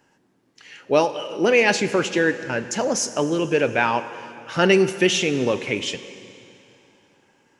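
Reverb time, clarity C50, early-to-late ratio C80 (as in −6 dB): 2.9 s, 12.5 dB, 13.0 dB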